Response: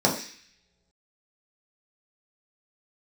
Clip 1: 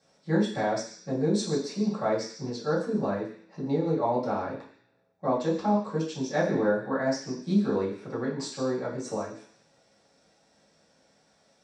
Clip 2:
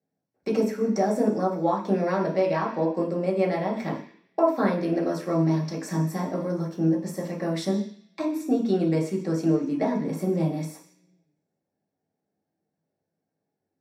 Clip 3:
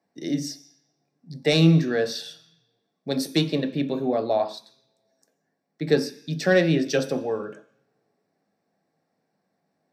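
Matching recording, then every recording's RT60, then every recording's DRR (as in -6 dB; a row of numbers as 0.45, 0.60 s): 2; not exponential, not exponential, not exponential; -11.5, -3.0, 6.5 dB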